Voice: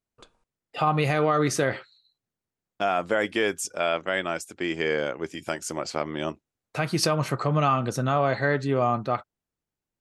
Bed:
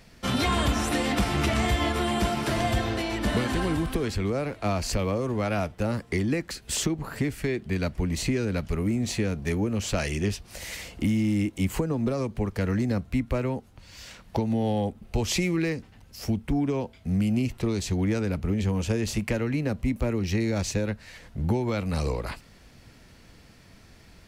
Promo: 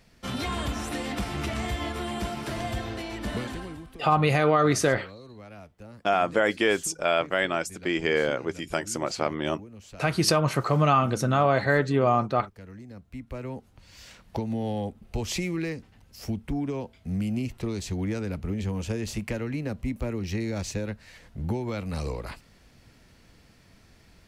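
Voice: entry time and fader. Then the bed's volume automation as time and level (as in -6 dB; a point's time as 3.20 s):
3.25 s, +1.5 dB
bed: 3.43 s -6 dB
3.93 s -18.5 dB
12.90 s -18.5 dB
13.65 s -4 dB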